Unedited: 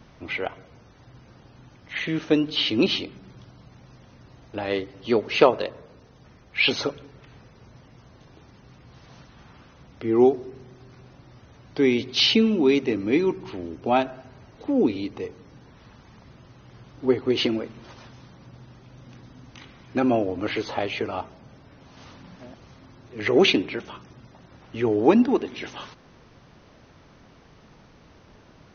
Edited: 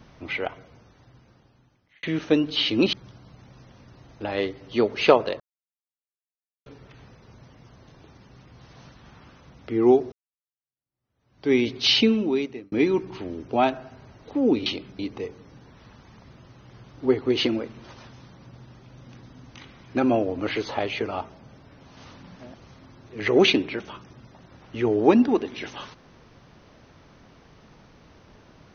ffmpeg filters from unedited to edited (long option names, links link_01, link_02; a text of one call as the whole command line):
ffmpeg -i in.wav -filter_complex "[0:a]asplit=9[link_01][link_02][link_03][link_04][link_05][link_06][link_07][link_08][link_09];[link_01]atrim=end=2.03,asetpts=PTS-STARTPTS,afade=type=out:start_time=0.52:duration=1.51[link_10];[link_02]atrim=start=2.03:end=2.932,asetpts=PTS-STARTPTS,afade=type=in:duration=0.004:curve=hsin[link_11];[link_03]atrim=start=3.258:end=5.73,asetpts=PTS-STARTPTS,afade=type=out:start_time=2.468:duration=0.004:curve=hsin[link_12];[link_04]atrim=start=5.73:end=6.99,asetpts=PTS-STARTPTS,volume=0[link_13];[link_05]atrim=start=6.99:end=10.45,asetpts=PTS-STARTPTS,afade=type=in:duration=0.004:curve=hsin,afade=type=out:start_time=3.456:duration=0.004:curve=hsin[link_14];[link_06]atrim=start=10.45:end=13.05,asetpts=PTS-STARTPTS,afade=type=in:duration=1.4:curve=exp,afade=type=out:start_time=1.93:duration=0.67[link_15];[link_07]atrim=start=13.05:end=14.992,asetpts=PTS-STARTPTS,afade=type=in:duration=0.004:curve=hsin[link_16];[link_08]atrim=start=2.928:end=3.262[link_17];[link_09]atrim=start=14.988[link_18];[link_10][link_11]concat=n=2:v=0:a=1[link_19];[link_12][link_13][link_14][link_15][link_16]concat=n=5:v=0:a=1[link_20];[link_19][link_20]acrossfade=duration=0.004:curve1=hsin:curve2=hsin[link_21];[link_21][link_17]acrossfade=duration=0.004:curve1=hsin:curve2=hsin[link_22];[link_22][link_18]acrossfade=duration=0.004:curve1=hsin:curve2=hsin" out.wav